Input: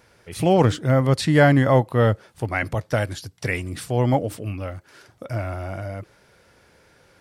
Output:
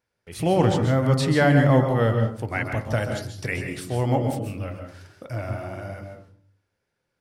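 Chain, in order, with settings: gate with hold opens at -43 dBFS; de-hum 48.78 Hz, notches 29; reverberation RT60 0.40 s, pre-delay 127 ms, DRR 5 dB; trim -3 dB

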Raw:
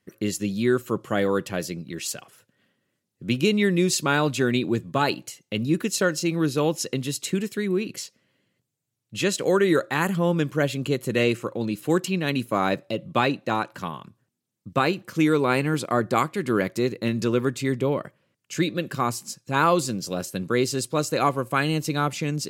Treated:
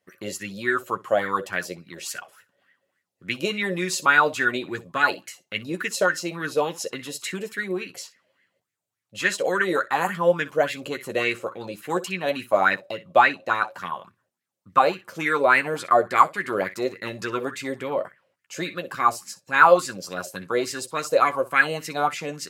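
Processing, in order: bass shelf 470 Hz -9 dB; early reflections 11 ms -7 dB, 62 ms -17 dB; sweeping bell 3.5 Hz 540–2000 Hz +18 dB; trim -4 dB

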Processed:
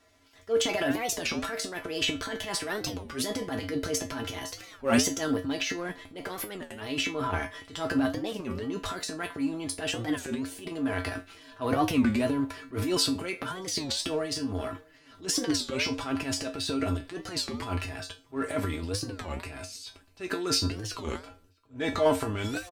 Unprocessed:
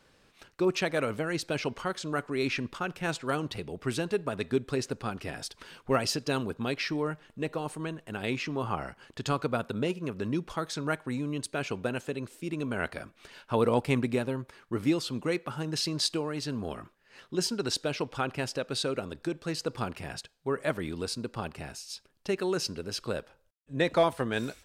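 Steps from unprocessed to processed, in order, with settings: gliding tape speed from 125% -> 92%; comb 3 ms, depth 37%; transient shaper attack -9 dB, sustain +11 dB; in parallel at -8 dB: crossover distortion -36.5 dBFS; on the sum: feedback comb 91 Hz, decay 0.22 s, harmonics odd, mix 90%; echo from a far wall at 110 m, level -28 dB; warped record 33 1/3 rpm, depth 250 cents; trim +8 dB

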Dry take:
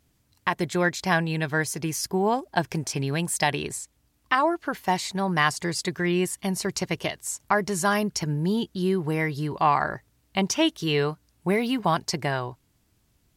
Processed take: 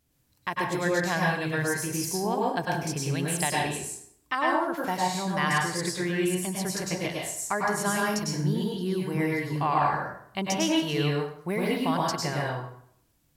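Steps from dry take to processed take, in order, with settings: treble shelf 9.4 kHz +6.5 dB; plate-style reverb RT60 0.65 s, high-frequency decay 0.75×, pre-delay 90 ms, DRR -3 dB; trim -7 dB

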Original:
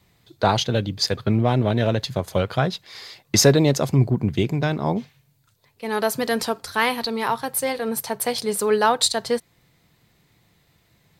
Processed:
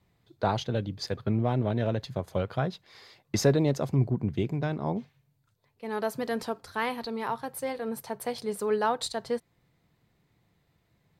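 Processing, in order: treble shelf 2.2 kHz -9 dB; trim -7 dB

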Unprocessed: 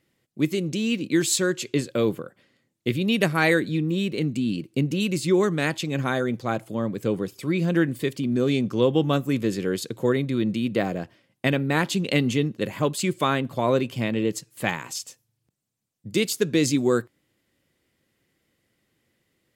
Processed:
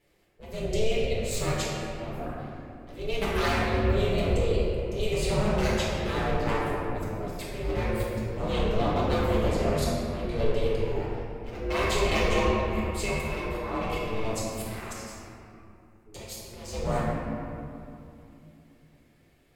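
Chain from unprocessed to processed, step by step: one-sided wavefolder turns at -18.5 dBFS; compression 6:1, threshold -29 dBFS, peak gain reduction 11.5 dB; slow attack 361 ms; 11.68–14.25 s: small resonant body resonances 830/2400 Hz, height 15 dB, ringing for 35 ms; ring modulator 220 Hz; reverberation RT60 2.8 s, pre-delay 4 ms, DRR -9 dB

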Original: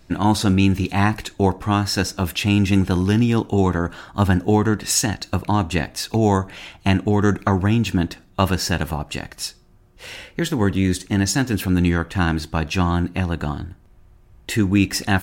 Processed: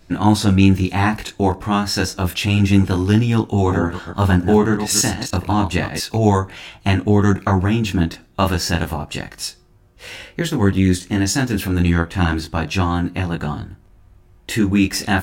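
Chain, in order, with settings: 3.53–5.98 s: chunks repeated in reverse 146 ms, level -7.5 dB; chorus 0.3 Hz, delay 18.5 ms, depth 6 ms; trim +4.5 dB

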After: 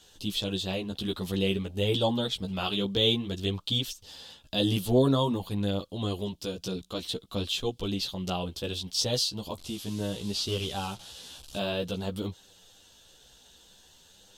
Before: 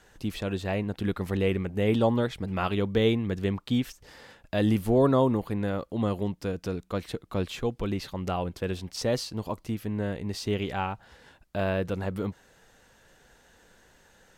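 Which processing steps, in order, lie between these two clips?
9.58–11.58 s: one-bit delta coder 64 kbps, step -43.5 dBFS; chorus voices 2, 0.52 Hz, delay 13 ms, depth 3.3 ms; resonant high shelf 2.6 kHz +8.5 dB, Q 3

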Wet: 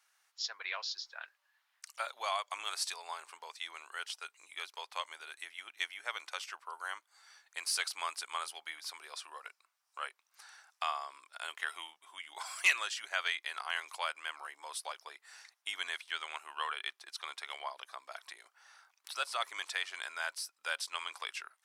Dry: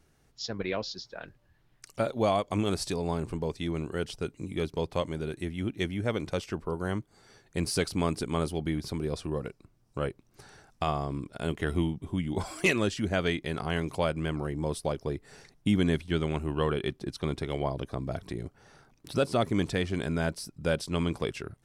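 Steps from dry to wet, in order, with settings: high-pass 980 Hz 24 dB/octave

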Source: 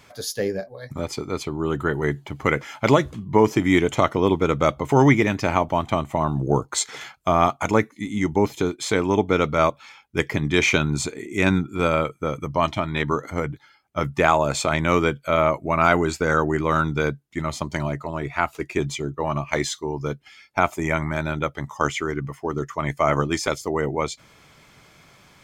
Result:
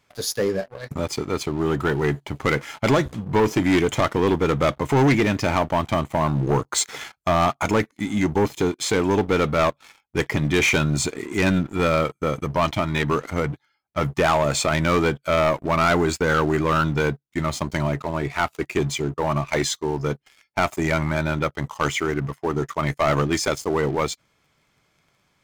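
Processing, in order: waveshaping leveller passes 3; trim -8 dB

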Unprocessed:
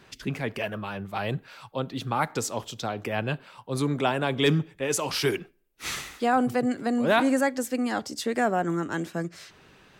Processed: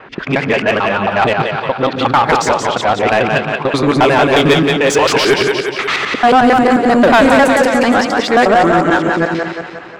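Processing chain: time reversed locally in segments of 89 ms; level-controlled noise filter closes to 1.8 kHz, open at -20.5 dBFS; on a send: two-band feedback delay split 370 Hz, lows 136 ms, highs 178 ms, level -6 dB; on the sum: overdrive pedal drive 21 dB, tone 2.1 kHz, clips at -9.5 dBFS; trim +9 dB

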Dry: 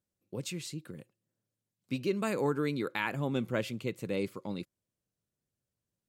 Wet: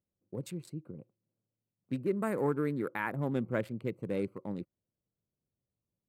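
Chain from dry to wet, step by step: local Wiener filter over 25 samples; high-order bell 4.3 kHz -8 dB, from 1.99 s -15 dB, from 3.20 s -8.5 dB

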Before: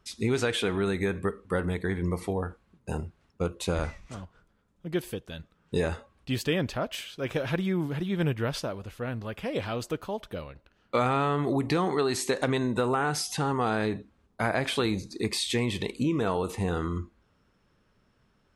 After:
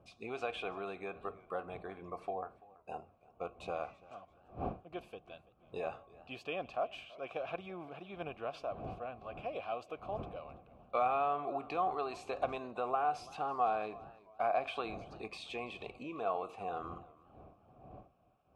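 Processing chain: wind noise 88 Hz -27 dBFS; vowel filter a; modulated delay 335 ms, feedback 35%, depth 109 cents, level -21 dB; trim +3 dB

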